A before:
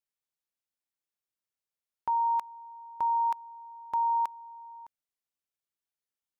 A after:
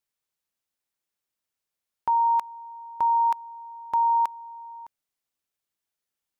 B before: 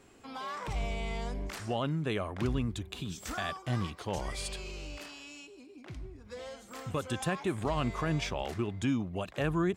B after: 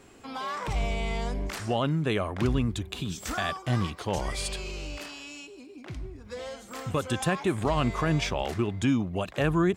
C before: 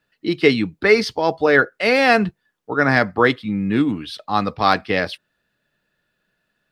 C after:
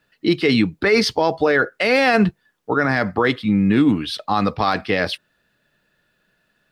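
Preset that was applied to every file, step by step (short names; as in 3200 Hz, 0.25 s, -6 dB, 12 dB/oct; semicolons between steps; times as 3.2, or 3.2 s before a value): limiter -12.5 dBFS; gain +5.5 dB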